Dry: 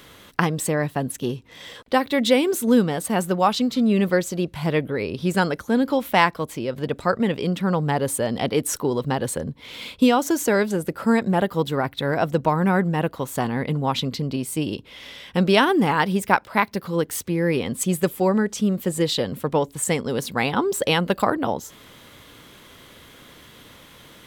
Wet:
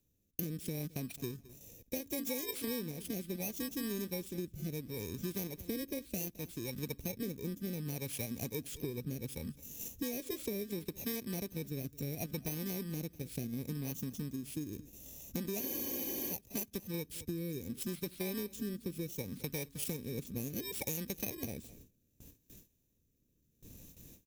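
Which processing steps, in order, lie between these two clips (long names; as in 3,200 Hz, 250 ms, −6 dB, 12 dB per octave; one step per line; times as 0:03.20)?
samples in bit-reversed order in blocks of 32 samples
guitar amp tone stack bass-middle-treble 10-0-1
in parallel at 0 dB: output level in coarse steps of 14 dB
on the sum: formants moved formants +3 semitones
rotating-speaker cabinet horn 0.7 Hz
on a send: repeating echo 213 ms, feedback 17%, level −24 dB
on the sum: downward compressor 6 to 1, threshold −44 dBFS, peak gain reduction 13.5 dB
low-shelf EQ 300 Hz −4 dB
noise gate with hold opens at −53 dBFS
frozen spectrum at 0:15.62, 0.70 s
level +10 dB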